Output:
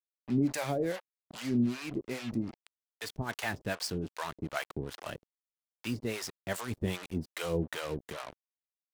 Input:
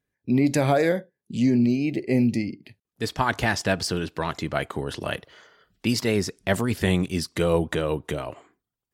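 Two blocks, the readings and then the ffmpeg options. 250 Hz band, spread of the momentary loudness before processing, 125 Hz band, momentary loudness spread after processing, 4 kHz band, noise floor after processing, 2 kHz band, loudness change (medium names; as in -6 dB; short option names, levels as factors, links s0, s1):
-10.5 dB, 11 LU, -11.0 dB, 13 LU, -9.5 dB, under -85 dBFS, -10.0 dB, -10.5 dB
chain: -filter_complex "[0:a]acrusher=bits=4:mix=0:aa=0.5,acrossover=split=570[s0][s1];[s0]aeval=exprs='val(0)*(1-1/2+1/2*cos(2*PI*2.5*n/s))':c=same[s2];[s1]aeval=exprs='val(0)*(1-1/2-1/2*cos(2*PI*2.5*n/s))':c=same[s3];[s2][s3]amix=inputs=2:normalize=0,volume=0.501"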